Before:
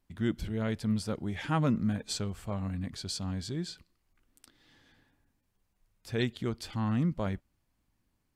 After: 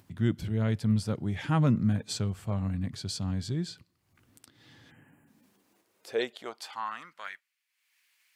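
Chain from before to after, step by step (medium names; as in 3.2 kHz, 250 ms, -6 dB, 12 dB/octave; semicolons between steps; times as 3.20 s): upward compressor, threshold -49 dBFS; high-pass sweep 110 Hz -> 2.2 kHz, 4.84–7.52 s; spectral selection erased 4.90–5.28 s, 3.2–6.8 kHz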